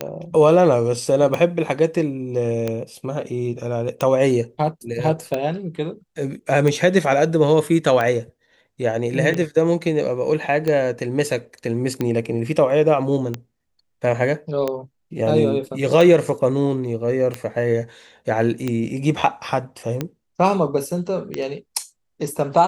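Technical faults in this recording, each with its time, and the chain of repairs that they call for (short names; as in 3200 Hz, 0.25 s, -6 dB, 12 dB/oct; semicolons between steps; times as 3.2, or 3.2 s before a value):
tick 45 rpm -10 dBFS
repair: de-click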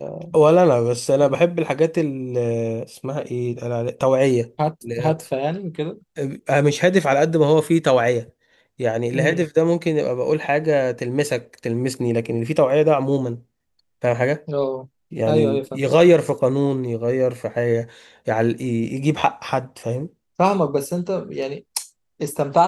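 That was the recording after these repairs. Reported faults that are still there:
none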